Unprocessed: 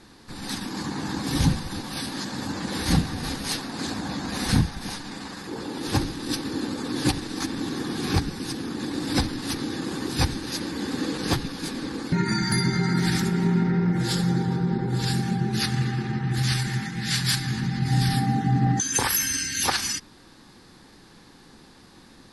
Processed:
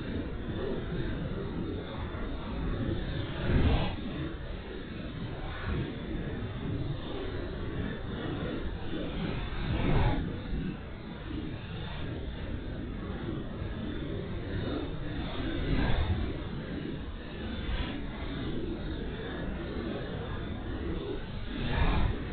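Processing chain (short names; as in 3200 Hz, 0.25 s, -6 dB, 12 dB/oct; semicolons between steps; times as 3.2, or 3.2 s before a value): LPC vocoder at 8 kHz whisper; Paulstretch 5.8×, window 0.05 s, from 6.45; gain -5 dB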